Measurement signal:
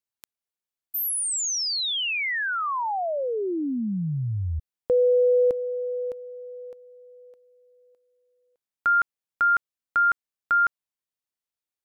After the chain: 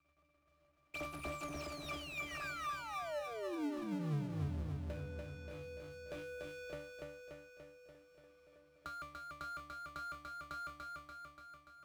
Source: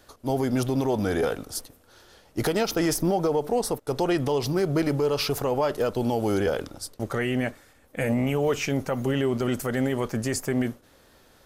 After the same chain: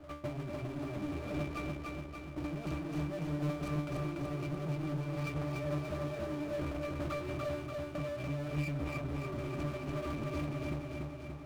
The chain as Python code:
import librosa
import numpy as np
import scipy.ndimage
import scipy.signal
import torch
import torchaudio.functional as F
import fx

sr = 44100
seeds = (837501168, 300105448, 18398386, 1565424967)

p1 = scipy.ndimage.median_filter(x, 25, mode='constant')
p2 = scipy.signal.lfilter([1.0, -0.9], [1.0], p1)
p3 = fx.env_lowpass(p2, sr, base_hz=1800.0, full_db=-38.5)
p4 = fx.peak_eq(p3, sr, hz=3500.0, db=2.5, octaves=0.77)
p5 = fx.hum_notches(p4, sr, base_hz=50, count=7)
p6 = fx.leveller(p5, sr, passes=5)
p7 = fx.over_compress(p6, sr, threshold_db=-36.0, ratio=-0.5)
p8 = fx.octave_resonator(p7, sr, note='D', decay_s=0.22)
p9 = fx.power_curve(p8, sr, exponent=0.5)
p10 = p9 + fx.echo_feedback(p9, sr, ms=290, feedback_pct=52, wet_db=-3.5, dry=0)
p11 = fx.band_squash(p10, sr, depth_pct=40)
y = F.gain(torch.from_numpy(p11), 3.5).numpy()